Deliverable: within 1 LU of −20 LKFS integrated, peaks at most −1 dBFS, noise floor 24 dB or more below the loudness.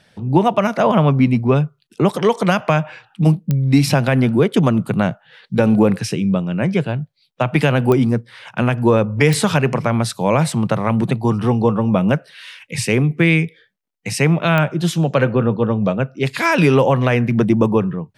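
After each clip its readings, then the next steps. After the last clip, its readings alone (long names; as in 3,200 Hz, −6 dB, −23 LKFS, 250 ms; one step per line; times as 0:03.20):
number of clicks 4; integrated loudness −17.0 LKFS; sample peak −1.5 dBFS; target loudness −20.0 LKFS
→ click removal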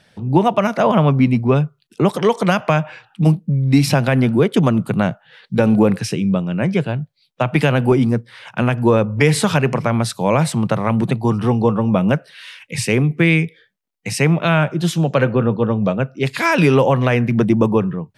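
number of clicks 0; integrated loudness −17.0 LKFS; sample peak −1.5 dBFS; target loudness −20.0 LKFS
→ level −3 dB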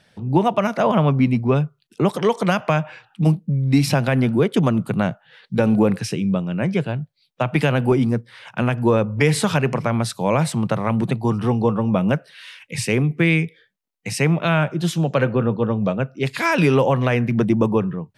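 integrated loudness −20.0 LKFS; sample peak −4.5 dBFS; background noise floor −63 dBFS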